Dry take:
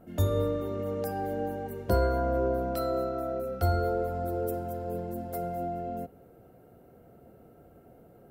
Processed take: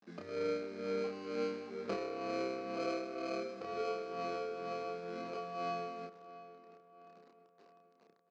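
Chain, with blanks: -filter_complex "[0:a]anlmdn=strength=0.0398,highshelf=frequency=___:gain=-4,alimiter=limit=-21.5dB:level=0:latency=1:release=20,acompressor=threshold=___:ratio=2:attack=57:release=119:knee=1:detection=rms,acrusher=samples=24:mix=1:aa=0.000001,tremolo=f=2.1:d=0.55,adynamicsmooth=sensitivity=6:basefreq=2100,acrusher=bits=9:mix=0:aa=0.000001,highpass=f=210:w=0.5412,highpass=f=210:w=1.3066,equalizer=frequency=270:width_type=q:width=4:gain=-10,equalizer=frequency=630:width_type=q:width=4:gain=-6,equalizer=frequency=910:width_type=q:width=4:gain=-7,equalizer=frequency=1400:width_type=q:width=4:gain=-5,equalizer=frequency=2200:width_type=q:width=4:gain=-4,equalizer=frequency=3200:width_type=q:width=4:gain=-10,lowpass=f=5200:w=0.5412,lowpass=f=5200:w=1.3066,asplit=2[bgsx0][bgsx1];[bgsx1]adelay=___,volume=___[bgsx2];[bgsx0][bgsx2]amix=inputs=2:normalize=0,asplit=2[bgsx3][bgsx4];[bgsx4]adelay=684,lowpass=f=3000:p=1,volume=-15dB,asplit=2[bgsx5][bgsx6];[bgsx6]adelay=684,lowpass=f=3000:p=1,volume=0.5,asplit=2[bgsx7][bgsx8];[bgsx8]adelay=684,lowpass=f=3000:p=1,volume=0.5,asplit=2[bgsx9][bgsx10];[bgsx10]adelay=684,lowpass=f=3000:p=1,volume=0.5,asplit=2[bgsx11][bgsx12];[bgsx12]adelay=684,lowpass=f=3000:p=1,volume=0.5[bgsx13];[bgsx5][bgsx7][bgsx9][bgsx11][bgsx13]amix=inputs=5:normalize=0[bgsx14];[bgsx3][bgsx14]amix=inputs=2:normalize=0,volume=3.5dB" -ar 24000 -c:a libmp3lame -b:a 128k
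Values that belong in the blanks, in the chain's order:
3900, -40dB, 30, -3dB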